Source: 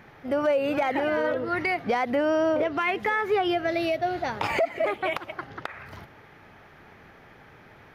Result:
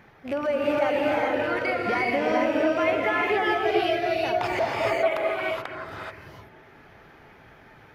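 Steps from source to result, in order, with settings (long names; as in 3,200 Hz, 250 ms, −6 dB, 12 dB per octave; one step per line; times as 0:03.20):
loose part that buzzes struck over −34 dBFS, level −25 dBFS
reverb reduction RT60 0.91 s
on a send: feedback echo with a band-pass in the loop 277 ms, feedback 63%, band-pass 310 Hz, level −11 dB
on the sum: reverb whose tail is shaped and stops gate 460 ms rising, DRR −3.5 dB
level −2.5 dB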